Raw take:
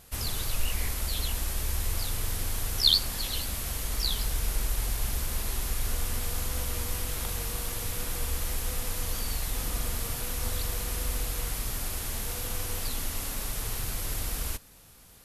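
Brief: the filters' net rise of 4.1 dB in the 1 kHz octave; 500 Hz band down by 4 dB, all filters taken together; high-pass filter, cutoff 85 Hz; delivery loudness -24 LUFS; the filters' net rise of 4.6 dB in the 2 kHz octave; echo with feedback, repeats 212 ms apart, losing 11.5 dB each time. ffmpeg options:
-af "highpass=85,equalizer=f=500:t=o:g=-6.5,equalizer=f=1000:t=o:g=5.5,equalizer=f=2000:t=o:g=4.5,aecho=1:1:212|424|636:0.266|0.0718|0.0194,volume=2.11"

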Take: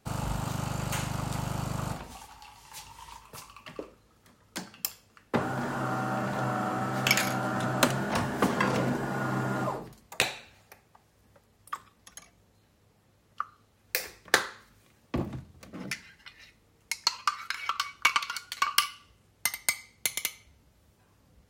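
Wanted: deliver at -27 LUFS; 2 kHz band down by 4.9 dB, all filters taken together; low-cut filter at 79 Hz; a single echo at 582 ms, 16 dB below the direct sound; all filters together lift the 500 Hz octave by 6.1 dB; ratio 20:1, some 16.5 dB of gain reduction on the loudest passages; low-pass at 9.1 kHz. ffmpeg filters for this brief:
-af "highpass=79,lowpass=9100,equalizer=f=500:t=o:g=8,equalizer=f=2000:t=o:g=-7,acompressor=threshold=0.02:ratio=20,aecho=1:1:582:0.158,volume=5.01"

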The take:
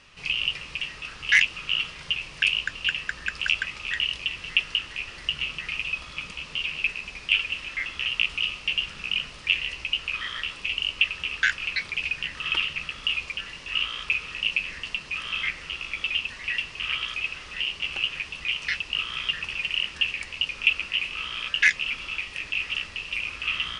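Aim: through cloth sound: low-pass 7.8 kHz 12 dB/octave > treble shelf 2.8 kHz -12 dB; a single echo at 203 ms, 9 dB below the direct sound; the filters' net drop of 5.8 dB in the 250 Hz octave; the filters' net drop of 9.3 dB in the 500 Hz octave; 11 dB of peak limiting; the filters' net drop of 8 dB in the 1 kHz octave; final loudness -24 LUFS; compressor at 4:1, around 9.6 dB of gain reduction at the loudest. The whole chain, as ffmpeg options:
-af "equalizer=f=250:t=o:g=-6.5,equalizer=f=500:t=o:g=-7.5,equalizer=f=1000:t=o:g=-7,acompressor=threshold=0.0447:ratio=4,alimiter=limit=0.0891:level=0:latency=1,lowpass=7800,highshelf=f=2800:g=-12,aecho=1:1:203:0.355,volume=5.01"

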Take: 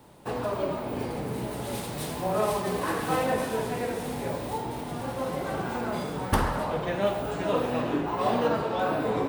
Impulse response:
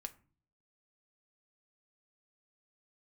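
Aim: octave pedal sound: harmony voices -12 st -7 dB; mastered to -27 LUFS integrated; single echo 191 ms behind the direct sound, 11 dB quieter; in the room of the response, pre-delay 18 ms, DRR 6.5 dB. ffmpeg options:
-filter_complex "[0:a]aecho=1:1:191:0.282,asplit=2[s0][s1];[1:a]atrim=start_sample=2205,adelay=18[s2];[s1][s2]afir=irnorm=-1:irlink=0,volume=0.708[s3];[s0][s3]amix=inputs=2:normalize=0,asplit=2[s4][s5];[s5]asetrate=22050,aresample=44100,atempo=2,volume=0.447[s6];[s4][s6]amix=inputs=2:normalize=0,volume=1.12"

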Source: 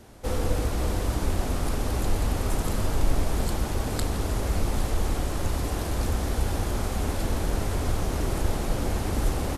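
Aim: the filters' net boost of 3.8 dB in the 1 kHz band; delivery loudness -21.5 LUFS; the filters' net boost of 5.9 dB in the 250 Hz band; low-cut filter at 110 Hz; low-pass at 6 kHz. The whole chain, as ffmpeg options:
-af "highpass=110,lowpass=6000,equalizer=f=250:t=o:g=7.5,equalizer=f=1000:t=o:g=4.5,volume=2.24"

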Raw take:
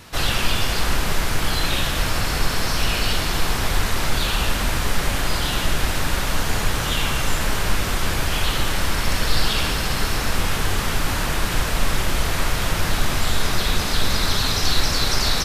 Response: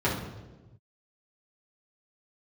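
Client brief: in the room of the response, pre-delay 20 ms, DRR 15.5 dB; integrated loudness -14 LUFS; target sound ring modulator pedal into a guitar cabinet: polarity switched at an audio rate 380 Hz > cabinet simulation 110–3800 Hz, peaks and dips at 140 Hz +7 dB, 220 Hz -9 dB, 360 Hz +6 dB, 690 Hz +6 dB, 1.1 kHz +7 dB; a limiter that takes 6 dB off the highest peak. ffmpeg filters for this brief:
-filter_complex "[0:a]alimiter=limit=0.266:level=0:latency=1,asplit=2[s0][s1];[1:a]atrim=start_sample=2205,adelay=20[s2];[s1][s2]afir=irnorm=-1:irlink=0,volume=0.0376[s3];[s0][s3]amix=inputs=2:normalize=0,aeval=exprs='val(0)*sgn(sin(2*PI*380*n/s))':c=same,highpass=110,equalizer=f=140:t=q:w=4:g=7,equalizer=f=220:t=q:w=4:g=-9,equalizer=f=360:t=q:w=4:g=6,equalizer=f=690:t=q:w=4:g=6,equalizer=f=1100:t=q:w=4:g=7,lowpass=f=3800:w=0.5412,lowpass=f=3800:w=1.3066,volume=1.33"

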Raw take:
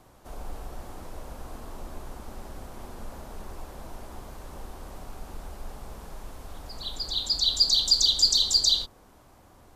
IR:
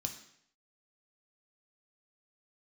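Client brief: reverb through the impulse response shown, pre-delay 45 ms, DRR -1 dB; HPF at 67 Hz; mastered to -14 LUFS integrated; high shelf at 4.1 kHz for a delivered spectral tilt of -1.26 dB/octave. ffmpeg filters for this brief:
-filter_complex "[0:a]highpass=67,highshelf=f=4100:g=-4,asplit=2[s0][s1];[1:a]atrim=start_sample=2205,adelay=45[s2];[s1][s2]afir=irnorm=-1:irlink=0,volume=1.33[s3];[s0][s3]amix=inputs=2:normalize=0,volume=1.5"

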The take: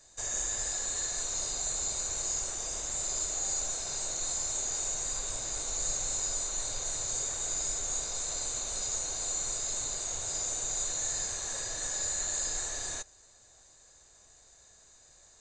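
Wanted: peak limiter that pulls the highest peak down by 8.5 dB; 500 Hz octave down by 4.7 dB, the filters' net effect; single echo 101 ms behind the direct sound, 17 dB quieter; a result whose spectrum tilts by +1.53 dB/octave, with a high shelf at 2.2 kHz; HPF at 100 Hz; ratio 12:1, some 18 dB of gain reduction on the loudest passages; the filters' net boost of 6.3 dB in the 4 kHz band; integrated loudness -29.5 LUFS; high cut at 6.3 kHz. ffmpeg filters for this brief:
-af "highpass=100,lowpass=6300,equalizer=f=500:t=o:g=-6.5,highshelf=f=2200:g=4.5,equalizer=f=4000:t=o:g=4,acompressor=threshold=0.00447:ratio=12,alimiter=level_in=10:limit=0.0631:level=0:latency=1,volume=0.1,aecho=1:1:101:0.141,volume=11.2"

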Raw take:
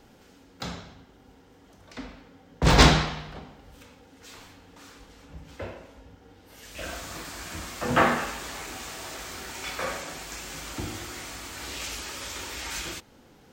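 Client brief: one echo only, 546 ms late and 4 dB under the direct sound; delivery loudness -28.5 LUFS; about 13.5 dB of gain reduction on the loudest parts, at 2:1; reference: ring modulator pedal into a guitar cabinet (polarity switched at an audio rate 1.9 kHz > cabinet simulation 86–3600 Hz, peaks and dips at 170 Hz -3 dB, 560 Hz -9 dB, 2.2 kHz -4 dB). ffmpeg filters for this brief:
-af "acompressor=threshold=0.0158:ratio=2,aecho=1:1:546:0.631,aeval=exprs='val(0)*sgn(sin(2*PI*1900*n/s))':c=same,highpass=86,equalizer=f=170:t=q:w=4:g=-3,equalizer=f=560:t=q:w=4:g=-9,equalizer=f=2200:t=q:w=4:g=-4,lowpass=f=3600:w=0.5412,lowpass=f=3600:w=1.3066,volume=3.16"

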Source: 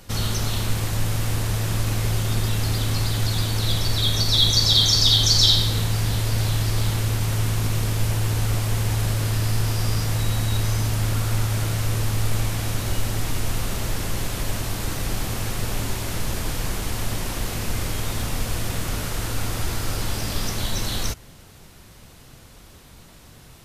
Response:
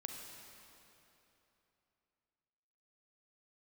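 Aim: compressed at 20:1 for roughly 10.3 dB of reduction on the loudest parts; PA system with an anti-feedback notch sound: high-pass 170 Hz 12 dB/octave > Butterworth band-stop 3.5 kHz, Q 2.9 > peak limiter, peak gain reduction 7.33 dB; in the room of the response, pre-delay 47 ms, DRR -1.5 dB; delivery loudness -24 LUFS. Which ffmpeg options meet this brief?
-filter_complex "[0:a]acompressor=threshold=0.0708:ratio=20,asplit=2[s0][s1];[1:a]atrim=start_sample=2205,adelay=47[s2];[s1][s2]afir=irnorm=-1:irlink=0,volume=1.5[s3];[s0][s3]amix=inputs=2:normalize=0,highpass=170,asuperstop=centerf=3500:order=8:qfactor=2.9,volume=1.88,alimiter=limit=0.178:level=0:latency=1"

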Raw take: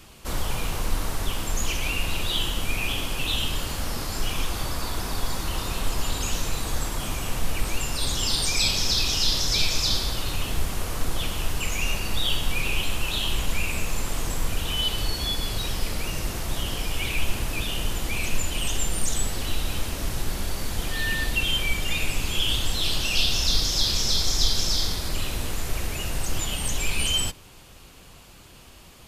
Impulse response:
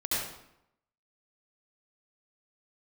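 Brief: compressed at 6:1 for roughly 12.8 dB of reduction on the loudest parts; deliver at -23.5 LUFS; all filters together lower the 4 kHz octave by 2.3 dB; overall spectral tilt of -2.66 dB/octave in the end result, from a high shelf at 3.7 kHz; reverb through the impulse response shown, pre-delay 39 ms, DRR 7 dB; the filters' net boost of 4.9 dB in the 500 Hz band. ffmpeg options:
-filter_complex "[0:a]equalizer=f=500:t=o:g=6,highshelf=f=3700:g=7.5,equalizer=f=4000:t=o:g=-8.5,acompressor=threshold=0.0316:ratio=6,asplit=2[s0][s1];[1:a]atrim=start_sample=2205,adelay=39[s2];[s1][s2]afir=irnorm=-1:irlink=0,volume=0.178[s3];[s0][s3]amix=inputs=2:normalize=0,volume=3.35"

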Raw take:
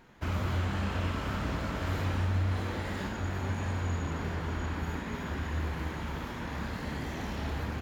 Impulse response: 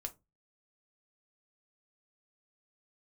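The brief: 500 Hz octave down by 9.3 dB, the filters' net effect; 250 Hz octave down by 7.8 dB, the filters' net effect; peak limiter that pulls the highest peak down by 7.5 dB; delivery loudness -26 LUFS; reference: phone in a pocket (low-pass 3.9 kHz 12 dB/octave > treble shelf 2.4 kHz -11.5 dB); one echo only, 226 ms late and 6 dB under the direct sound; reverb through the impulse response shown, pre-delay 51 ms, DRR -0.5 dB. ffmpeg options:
-filter_complex "[0:a]equalizer=f=250:t=o:g=-8.5,equalizer=f=500:t=o:g=-9,alimiter=level_in=1.78:limit=0.0631:level=0:latency=1,volume=0.562,aecho=1:1:226:0.501,asplit=2[s0][s1];[1:a]atrim=start_sample=2205,adelay=51[s2];[s1][s2]afir=irnorm=-1:irlink=0,volume=1.41[s3];[s0][s3]amix=inputs=2:normalize=0,lowpass=3900,highshelf=f=2400:g=-11.5,volume=2.24"

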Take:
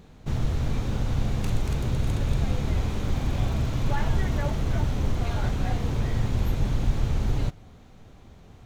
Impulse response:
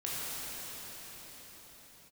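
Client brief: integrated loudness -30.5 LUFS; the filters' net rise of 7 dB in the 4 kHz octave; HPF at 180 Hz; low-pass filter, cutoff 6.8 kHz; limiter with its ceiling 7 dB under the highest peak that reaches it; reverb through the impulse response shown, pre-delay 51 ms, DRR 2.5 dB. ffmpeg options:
-filter_complex "[0:a]highpass=180,lowpass=6800,equalizer=f=4000:t=o:g=9,alimiter=level_in=1.26:limit=0.0631:level=0:latency=1,volume=0.794,asplit=2[s0][s1];[1:a]atrim=start_sample=2205,adelay=51[s2];[s1][s2]afir=irnorm=-1:irlink=0,volume=0.376[s3];[s0][s3]amix=inputs=2:normalize=0,volume=1.33"

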